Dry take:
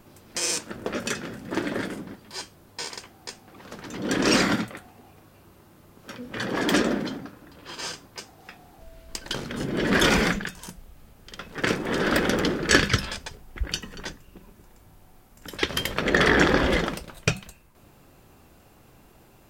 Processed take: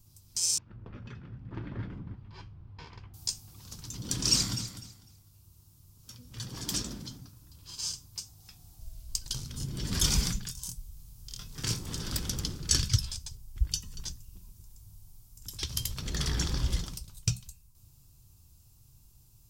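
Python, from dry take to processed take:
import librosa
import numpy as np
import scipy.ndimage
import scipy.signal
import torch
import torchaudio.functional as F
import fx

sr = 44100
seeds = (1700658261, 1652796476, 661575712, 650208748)

y = fx.lowpass(x, sr, hz=2200.0, slope=24, at=(0.58, 3.14))
y = fx.echo_throw(y, sr, start_s=4.31, length_s=0.4, ms=250, feedback_pct=25, wet_db=-11.5)
y = fx.doubler(y, sr, ms=25.0, db=-4.5, at=(10.46, 11.92))
y = fx.curve_eq(y, sr, hz=(120.0, 200.0, 590.0, 1000.0, 1800.0, 5400.0), db=(0, -16, -28, -19, -26, 0))
y = fx.rider(y, sr, range_db=10, speed_s=2.0)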